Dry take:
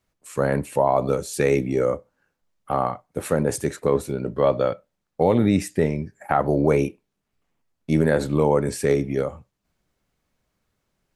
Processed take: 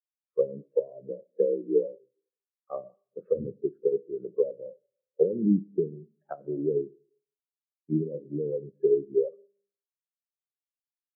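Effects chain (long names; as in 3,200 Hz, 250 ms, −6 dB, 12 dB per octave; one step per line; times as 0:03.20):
0:03.05–0:03.60: sub-octave generator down 1 octave, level +3 dB
treble cut that deepens with the level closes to 310 Hz, closed at −17 dBFS
four-comb reverb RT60 1.4 s, combs from 31 ms, DRR 9 dB
0:01.09–0:01.87: frequency shifter +50 Hz
loudspeaker in its box 230–2,500 Hz, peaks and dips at 250 Hz −9 dB, 800 Hz −9 dB, 2,100 Hz −3 dB
every bin expanded away from the loudest bin 2.5 to 1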